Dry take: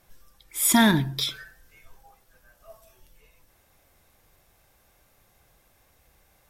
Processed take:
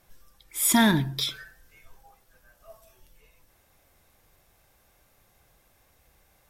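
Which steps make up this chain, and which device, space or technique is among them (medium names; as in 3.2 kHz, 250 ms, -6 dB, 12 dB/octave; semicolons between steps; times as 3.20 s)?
parallel distortion (in parallel at -14 dB: hard clipper -19.5 dBFS, distortion -8 dB); on the sum: trim -2.5 dB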